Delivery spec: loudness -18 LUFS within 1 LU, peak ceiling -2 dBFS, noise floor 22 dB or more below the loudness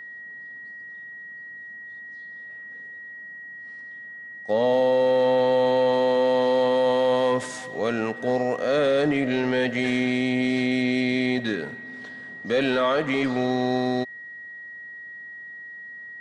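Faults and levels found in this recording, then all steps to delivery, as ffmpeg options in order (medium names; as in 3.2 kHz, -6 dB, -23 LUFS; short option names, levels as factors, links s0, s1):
steady tone 1.9 kHz; tone level -37 dBFS; loudness -22.5 LUFS; peak level -13.0 dBFS; loudness target -18.0 LUFS
-> -af "bandreject=f=1900:w=30"
-af "volume=1.68"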